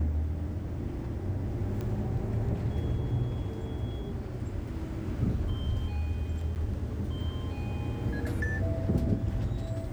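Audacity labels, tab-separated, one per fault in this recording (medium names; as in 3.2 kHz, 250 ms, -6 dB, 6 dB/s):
1.810000	1.810000	pop -24 dBFS
6.550000	6.560000	dropout 9.3 ms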